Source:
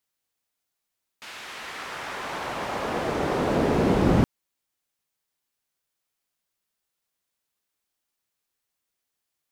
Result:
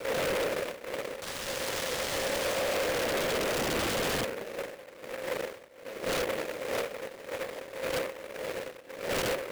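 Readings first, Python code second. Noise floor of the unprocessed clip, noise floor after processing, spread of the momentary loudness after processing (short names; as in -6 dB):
-83 dBFS, -49 dBFS, 11 LU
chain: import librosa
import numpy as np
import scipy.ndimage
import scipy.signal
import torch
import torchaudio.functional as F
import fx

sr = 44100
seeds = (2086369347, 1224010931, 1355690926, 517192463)

p1 = fx.dmg_wind(x, sr, seeds[0], corner_hz=480.0, level_db=-34.0)
p2 = np.maximum(p1, 0.0)
p3 = fx.env_lowpass_down(p2, sr, base_hz=590.0, full_db=-24.0)
p4 = fx.vowel_filter(p3, sr, vowel='e')
p5 = p4 + fx.echo_feedback(p4, sr, ms=90, feedback_pct=50, wet_db=-19.0, dry=0)
p6 = fx.env_lowpass_down(p5, sr, base_hz=1500.0, full_db=-40.5)
p7 = fx.fold_sine(p6, sr, drive_db=20, ceiling_db=-23.5)
p8 = p6 + F.gain(torch.from_numpy(p7), -4.0).numpy()
p9 = np.repeat(p8[::8], 8)[:len(p8)]
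y = fx.noise_mod_delay(p9, sr, seeds[1], noise_hz=1400.0, depth_ms=0.15)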